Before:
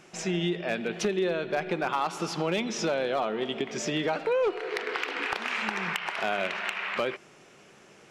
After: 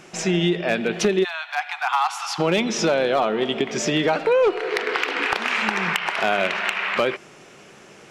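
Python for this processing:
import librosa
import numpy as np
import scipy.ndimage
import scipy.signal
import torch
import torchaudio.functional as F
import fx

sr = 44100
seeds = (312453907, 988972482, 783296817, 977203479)

y = fx.steep_highpass(x, sr, hz=720.0, slope=96, at=(1.23, 2.38), fade=0.02)
y = y * librosa.db_to_amplitude(8.0)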